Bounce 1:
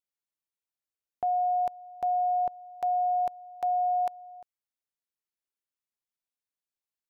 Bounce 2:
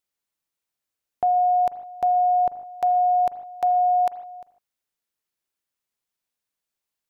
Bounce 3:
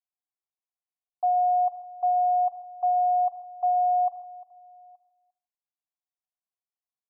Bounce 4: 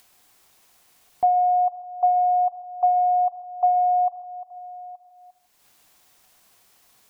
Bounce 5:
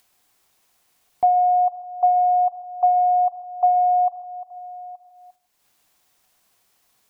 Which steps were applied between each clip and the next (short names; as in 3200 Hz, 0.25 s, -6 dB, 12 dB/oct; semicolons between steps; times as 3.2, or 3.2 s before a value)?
reverb, pre-delay 38 ms, DRR 13.5 dB; gain +7.5 dB
vocal tract filter a; outdoor echo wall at 150 m, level -28 dB; gain -2.5 dB
transient shaper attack +4 dB, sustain -1 dB; in parallel at +2.5 dB: upward compressor, threshold -26 dBFS; on the sum: gain -4.5 dB
gate -54 dBFS, range -8 dB; gain +2 dB